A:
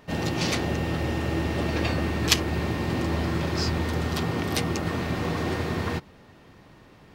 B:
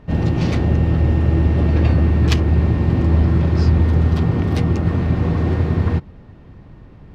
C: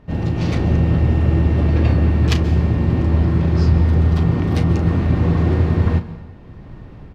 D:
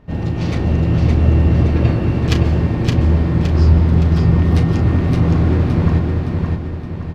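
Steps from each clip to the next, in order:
RIAA curve playback; gain +1 dB
doubler 35 ms -11 dB; plate-style reverb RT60 0.95 s, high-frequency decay 0.9×, pre-delay 0.12 s, DRR 14.5 dB; AGC gain up to 8 dB; gain -3.5 dB
feedback echo 0.567 s, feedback 45%, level -3.5 dB

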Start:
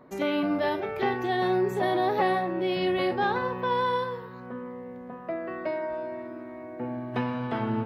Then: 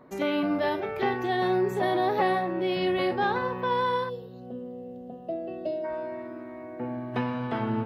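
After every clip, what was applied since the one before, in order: spectral gain 4.09–5.84, 820–2600 Hz -20 dB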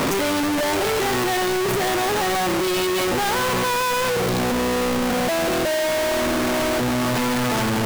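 infinite clipping; gain +7.5 dB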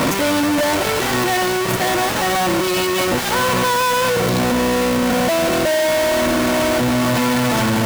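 notch comb 410 Hz; gain +5 dB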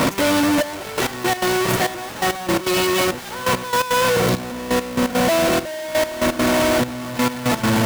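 step gate "x.xxxxx....x.." 169 bpm -12 dB

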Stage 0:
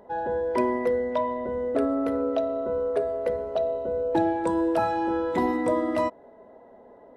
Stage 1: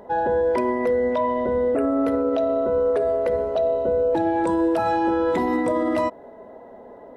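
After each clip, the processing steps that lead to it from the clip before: spectral repair 1.29–1.93, 2900–7400 Hz both; limiter -21.5 dBFS, peak gain reduction 10 dB; gain +7.5 dB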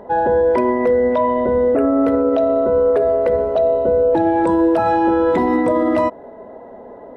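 high shelf 3500 Hz -10 dB; gain +6 dB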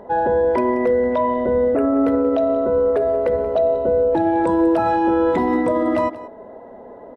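echo 0.181 s -16 dB; gain -2 dB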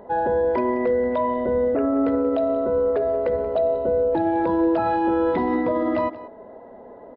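downsampling 11025 Hz; gain -3.5 dB

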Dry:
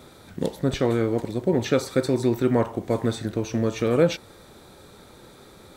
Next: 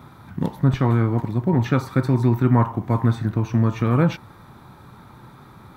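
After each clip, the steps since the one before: graphic EQ 125/250/500/1000/4000/8000 Hz +11/+3/-10/+11/-5/-11 dB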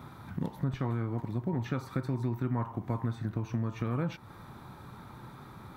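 compressor 3:1, threshold -29 dBFS, peak gain reduction 12.5 dB; gain -3 dB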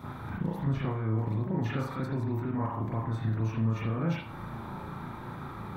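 limiter -30.5 dBFS, peak gain reduction 11.5 dB; reverb, pre-delay 36 ms, DRR -7 dB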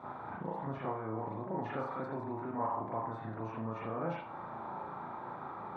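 band-pass 750 Hz, Q 1.5; gain +4 dB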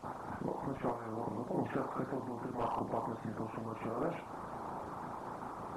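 delta modulation 64 kbps, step -51.5 dBFS; tilt -2 dB/oct; harmonic-percussive split harmonic -17 dB; gain +4.5 dB

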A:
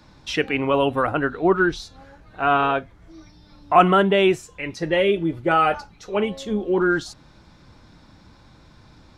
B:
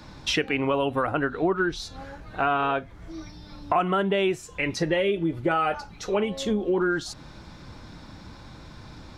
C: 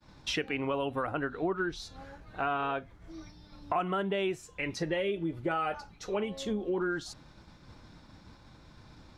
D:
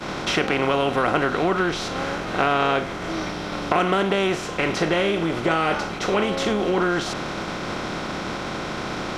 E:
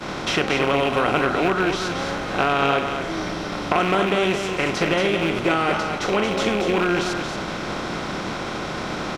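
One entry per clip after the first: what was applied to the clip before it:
compressor 4:1, threshold -29 dBFS, peak gain reduction 17.5 dB; gain +6 dB
expander -40 dBFS; gain -7.5 dB
per-bin compression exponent 0.4; gain +5.5 dB
rattling part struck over -25 dBFS, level -17 dBFS; echo 0.228 s -6.5 dB

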